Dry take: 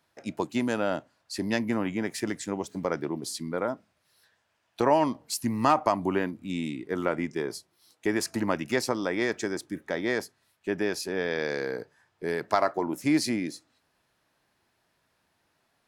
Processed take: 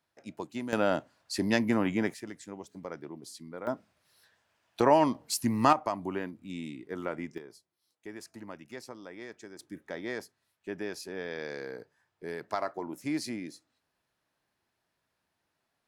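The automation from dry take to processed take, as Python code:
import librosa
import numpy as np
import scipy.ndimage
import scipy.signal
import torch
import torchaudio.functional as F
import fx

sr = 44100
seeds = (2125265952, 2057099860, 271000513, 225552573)

y = fx.gain(x, sr, db=fx.steps((0.0, -9.0), (0.73, 1.0), (2.14, -11.5), (3.67, 0.0), (5.73, -7.5), (7.38, -17.0), (9.59, -8.5)))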